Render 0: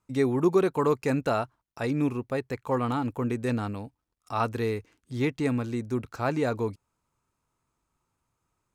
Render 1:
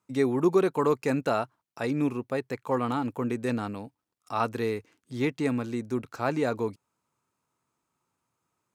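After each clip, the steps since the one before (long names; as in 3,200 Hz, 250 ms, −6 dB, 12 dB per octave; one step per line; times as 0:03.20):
high-pass filter 140 Hz 12 dB per octave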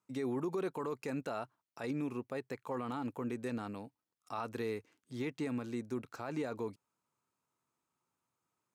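brickwall limiter −21.5 dBFS, peak gain reduction 10 dB
low-shelf EQ 64 Hz −9.5 dB
level −6.5 dB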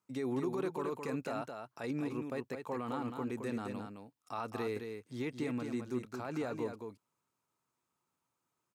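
single-tap delay 216 ms −6 dB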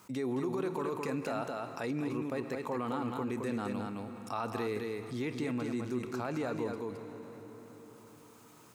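on a send at −13 dB: convolution reverb RT60 2.8 s, pre-delay 7 ms
on the sum: envelope flattener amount 50%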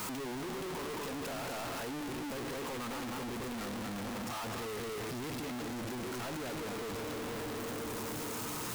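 sign of each sample alone
level −2.5 dB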